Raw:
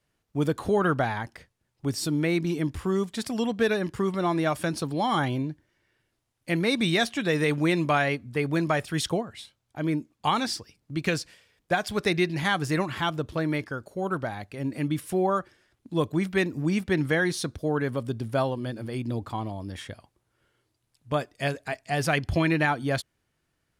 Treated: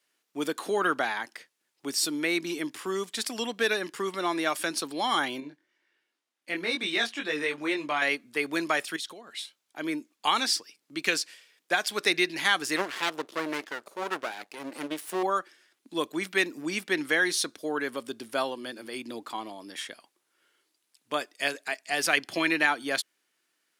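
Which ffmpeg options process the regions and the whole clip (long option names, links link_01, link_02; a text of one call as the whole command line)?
ffmpeg -i in.wav -filter_complex "[0:a]asettb=1/sr,asplit=3[link_01][link_02][link_03];[link_01]atrim=end=5.404[link_04];[link_02]atrim=start=5.4:end=8.02,asetpts=PTS-STARTPTS,afade=type=in:duration=0.004:curve=qsin,afade=type=out:start_time=2.616:duration=0.004:curve=qsin,highshelf=frequency=5700:gain=-11.5,flanger=delay=20:depth=2.1:speed=2.1[link_05];[link_03]atrim=start=8.016[link_06];[link_04][link_05]acrossfade=duration=0.004:curve1=hsin:curve2=qsin[link_07];[link_07][link_06]acrossfade=duration=0.004:curve1=qsin:curve2=hsin,asettb=1/sr,asplit=3[link_08][link_09][link_10];[link_08]atrim=end=8.964[link_11];[link_09]atrim=start=8.96:end=9.39,asetpts=PTS-STARTPTS,afade=type=in:duration=0.004:curve=qsin,afade=type=out:start_time=0.426:duration=0.004:curve=qsin,equalizer=frequency=3900:width_type=o:width=0.42:gain=6.5,acompressor=threshold=-36dB:ratio=16:attack=3.2:release=140:knee=1:detection=peak[link_12];[link_10]atrim=start=9.386[link_13];[link_11][link_12]acrossfade=duration=0.004:curve1=hsin:curve2=qsin[link_14];[link_14][link_13]acrossfade=duration=0.004:curve1=qsin:curve2=hsin,asettb=1/sr,asplit=3[link_15][link_16][link_17];[link_15]atrim=end=12.764[link_18];[link_16]atrim=start=12.76:end=15.23,asetpts=PTS-STARTPTS,afade=type=in:duration=0.004:curve=qsin,afade=type=out:start_time=2.466:duration=0.004:curve=qsin,equalizer=frequency=550:width_type=o:width=1.8:gain=7,aeval=exprs='max(val(0),0)':channel_layout=same[link_19];[link_17]atrim=start=15.226[link_20];[link_18][link_19]acrossfade=duration=0.004:curve1=hsin:curve2=qsin[link_21];[link_21][link_20]acrossfade=duration=0.004:curve1=qsin:curve2=hsin,highpass=frequency=310:width=0.5412,highpass=frequency=310:width=1.3066,equalizer=frequency=550:width_type=o:width=2.4:gain=-10.5,volume=6dB" out.wav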